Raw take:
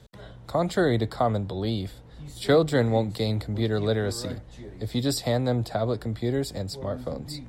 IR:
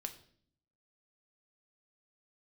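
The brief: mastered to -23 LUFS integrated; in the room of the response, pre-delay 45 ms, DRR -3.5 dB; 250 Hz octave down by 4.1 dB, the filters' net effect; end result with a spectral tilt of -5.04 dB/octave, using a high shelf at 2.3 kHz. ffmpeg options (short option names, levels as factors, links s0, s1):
-filter_complex "[0:a]equalizer=f=250:t=o:g=-5.5,highshelf=f=2300:g=4.5,asplit=2[s0][s1];[1:a]atrim=start_sample=2205,adelay=45[s2];[s1][s2]afir=irnorm=-1:irlink=0,volume=2[s3];[s0][s3]amix=inputs=2:normalize=0,volume=0.944"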